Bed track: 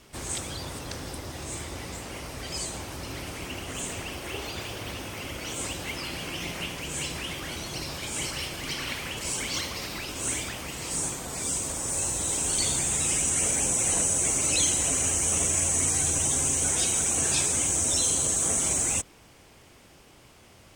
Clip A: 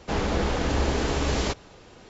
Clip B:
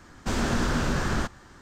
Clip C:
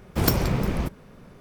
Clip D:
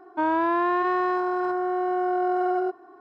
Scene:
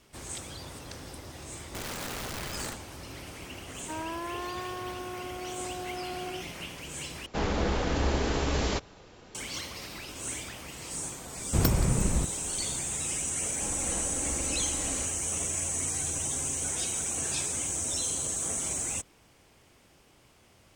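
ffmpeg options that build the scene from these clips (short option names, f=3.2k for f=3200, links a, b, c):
-filter_complex "[1:a]asplit=2[a][b];[0:a]volume=-6.5dB[c];[2:a]aeval=exprs='(mod(11.2*val(0)+1,2)-1)/11.2':c=same[d];[3:a]lowshelf=f=170:g=7.5[e];[b]aecho=1:1:3.7:0.89[f];[c]asplit=2[g][h];[g]atrim=end=7.264[i];[a]atrim=end=2.09,asetpts=PTS-STARTPTS,volume=-3dB[j];[h]atrim=start=9.346[k];[d]atrim=end=1.61,asetpts=PTS-STARTPTS,volume=-11.5dB,afade=t=in:d=0.004:c=hsin,afade=t=out:st=1.606:d=0.004:c=hsin,adelay=1480[l];[4:a]atrim=end=3,asetpts=PTS-STARTPTS,volume=-14dB,afade=t=in:d=0.004:c=hsin,afade=t=out:st=2.996:d=0.004:c=hsin,adelay=3710[m];[e]atrim=end=1.4,asetpts=PTS-STARTPTS,volume=-6.5dB,afade=t=in:d=0.004:c=hsin,afade=t=out:st=1.396:d=0.004:c=hsin,adelay=11370[n];[f]atrim=end=2.09,asetpts=PTS-STARTPTS,volume=-16.5dB,afade=t=in:d=0.004:c=hsin,afade=t=out:st=2.086:d=0.004:c=hsin,adelay=13520[o];[i][j]acrossfade=d=0.004:c1=hsin:c2=hsin[p];[p][k]acrossfade=d=0.004:c1=hsin:c2=hsin[q];[q][l][m][n][o]amix=inputs=5:normalize=0"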